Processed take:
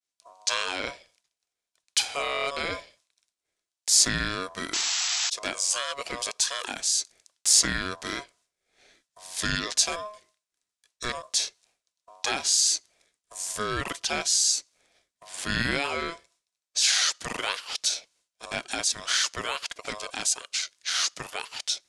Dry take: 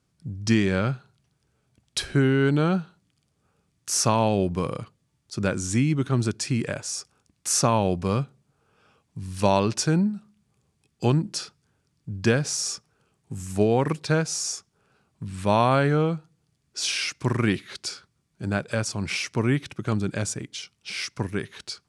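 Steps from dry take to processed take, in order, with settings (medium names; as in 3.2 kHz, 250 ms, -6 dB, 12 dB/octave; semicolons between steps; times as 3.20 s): painted sound noise, 4.73–5.30 s, 1.5–7.1 kHz -34 dBFS; frequency weighting ITU-R 468; in parallel at +1 dB: peak limiter -18.5 dBFS, peak gain reduction 18.5 dB; on the sum: ring modulator 840 Hz; expander -54 dBFS; trim -5 dB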